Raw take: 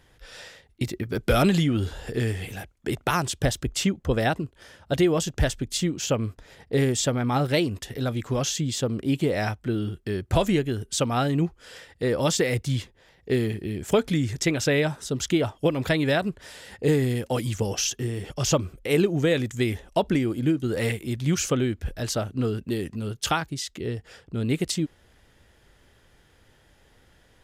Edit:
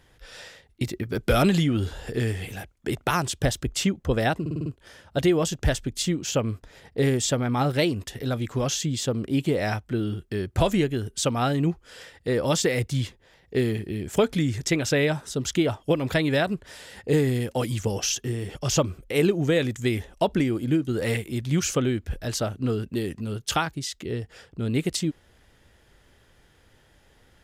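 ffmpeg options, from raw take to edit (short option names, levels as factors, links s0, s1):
-filter_complex "[0:a]asplit=6[s0][s1][s2][s3][s4][s5];[s0]atrim=end=4.462[s6];[s1]atrim=start=4.408:end=4.462[s7];[s2]atrim=start=4.408:end=4.462[s8];[s3]atrim=start=4.408:end=4.462[s9];[s4]atrim=start=4.408:end=4.462[s10];[s5]atrim=start=4.408[s11];[s6][s7]acrossfade=d=0.004:c1=hsin:c2=hsin[s12];[s12][s8]acrossfade=d=0.004:c1=hsin:c2=hsin[s13];[s13][s9]acrossfade=d=0.004:c1=hsin:c2=hsin[s14];[s14][s10]acrossfade=d=0.004:c1=hsin:c2=hsin[s15];[s15][s11]acrossfade=d=0.004:c1=hsin:c2=hsin"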